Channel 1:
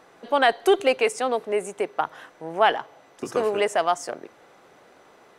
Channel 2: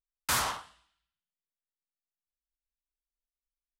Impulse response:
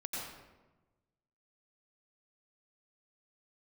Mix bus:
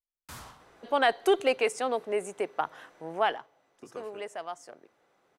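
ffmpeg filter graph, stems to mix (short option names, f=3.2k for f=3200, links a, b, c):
-filter_complex "[0:a]adelay=600,volume=-5dB,afade=t=out:st=3.1:d=0.4:silence=0.281838[a];[1:a]lowshelf=f=430:g=11.5,volume=-19.5dB,asplit=2[b][c];[c]volume=-14.5dB[d];[2:a]atrim=start_sample=2205[e];[d][e]afir=irnorm=-1:irlink=0[f];[a][b][f]amix=inputs=3:normalize=0"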